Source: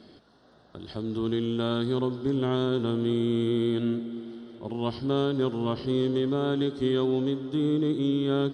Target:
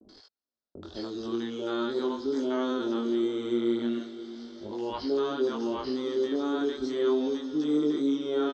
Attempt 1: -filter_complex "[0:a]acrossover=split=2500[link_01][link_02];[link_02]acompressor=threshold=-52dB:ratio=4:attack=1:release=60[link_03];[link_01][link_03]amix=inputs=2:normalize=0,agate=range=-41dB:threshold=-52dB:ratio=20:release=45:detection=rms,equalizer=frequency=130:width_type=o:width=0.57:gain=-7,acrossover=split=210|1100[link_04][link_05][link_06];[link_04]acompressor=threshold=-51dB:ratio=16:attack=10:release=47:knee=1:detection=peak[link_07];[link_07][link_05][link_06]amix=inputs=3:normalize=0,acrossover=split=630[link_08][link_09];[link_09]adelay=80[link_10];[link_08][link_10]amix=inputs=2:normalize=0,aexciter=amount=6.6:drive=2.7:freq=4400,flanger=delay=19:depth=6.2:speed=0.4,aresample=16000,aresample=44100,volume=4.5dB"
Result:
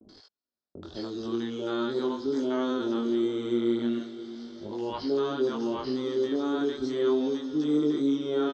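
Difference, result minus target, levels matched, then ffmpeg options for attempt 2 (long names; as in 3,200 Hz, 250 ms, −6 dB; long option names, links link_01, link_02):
125 Hz band +4.5 dB
-filter_complex "[0:a]acrossover=split=2500[link_01][link_02];[link_02]acompressor=threshold=-52dB:ratio=4:attack=1:release=60[link_03];[link_01][link_03]amix=inputs=2:normalize=0,agate=range=-41dB:threshold=-52dB:ratio=20:release=45:detection=rms,equalizer=frequency=130:width_type=o:width=0.57:gain=-18.5,acrossover=split=210|1100[link_04][link_05][link_06];[link_04]acompressor=threshold=-51dB:ratio=16:attack=10:release=47:knee=1:detection=peak[link_07];[link_07][link_05][link_06]amix=inputs=3:normalize=0,acrossover=split=630[link_08][link_09];[link_09]adelay=80[link_10];[link_08][link_10]amix=inputs=2:normalize=0,aexciter=amount=6.6:drive=2.7:freq=4400,flanger=delay=19:depth=6.2:speed=0.4,aresample=16000,aresample=44100,volume=4.5dB"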